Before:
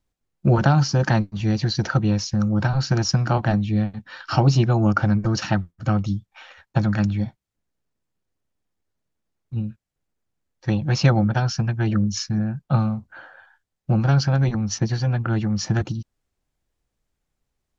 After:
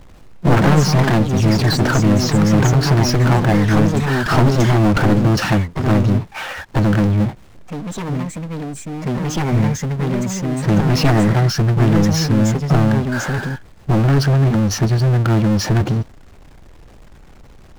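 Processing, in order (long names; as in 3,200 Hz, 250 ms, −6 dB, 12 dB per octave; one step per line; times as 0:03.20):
wavefolder on the positive side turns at −18.5 dBFS
low-pass filter 1,700 Hz 6 dB per octave
power curve on the samples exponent 0.5
delay with pitch and tempo change per echo 84 ms, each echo +3 semitones, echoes 2, each echo −6 dB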